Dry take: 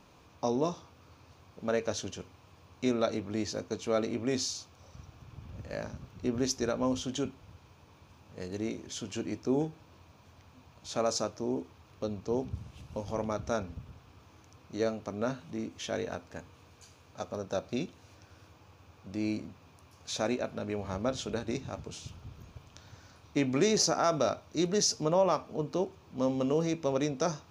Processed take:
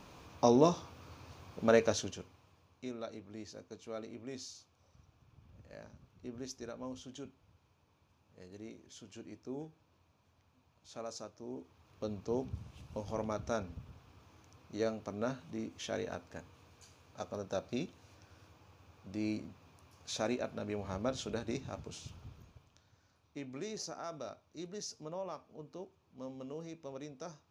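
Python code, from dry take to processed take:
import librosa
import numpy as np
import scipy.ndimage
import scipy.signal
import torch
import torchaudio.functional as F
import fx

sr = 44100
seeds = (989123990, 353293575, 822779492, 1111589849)

y = fx.gain(x, sr, db=fx.line((1.79, 4.0), (2.12, -3.0), (2.89, -14.0), (11.36, -14.0), (12.1, -4.0), (22.26, -4.0), (22.88, -16.0)))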